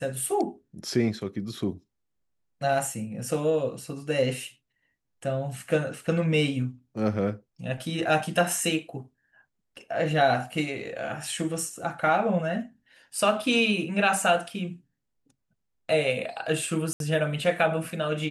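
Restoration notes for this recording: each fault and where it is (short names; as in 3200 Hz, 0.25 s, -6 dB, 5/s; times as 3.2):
16.93–17 gap 72 ms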